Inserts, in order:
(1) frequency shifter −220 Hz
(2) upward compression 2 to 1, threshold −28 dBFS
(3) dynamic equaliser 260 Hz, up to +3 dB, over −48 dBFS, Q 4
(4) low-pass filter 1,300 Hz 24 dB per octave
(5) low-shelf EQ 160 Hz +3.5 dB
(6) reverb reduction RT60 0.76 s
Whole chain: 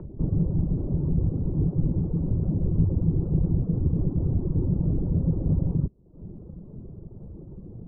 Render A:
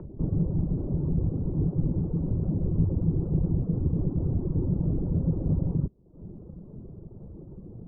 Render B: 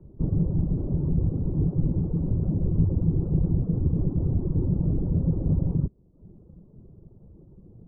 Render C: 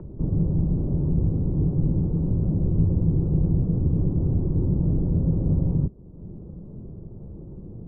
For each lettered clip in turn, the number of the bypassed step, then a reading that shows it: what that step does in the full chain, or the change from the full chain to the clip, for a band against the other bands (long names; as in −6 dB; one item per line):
5, change in integrated loudness −2.0 LU
2, change in momentary loudness spread −16 LU
6, change in integrated loudness +2.0 LU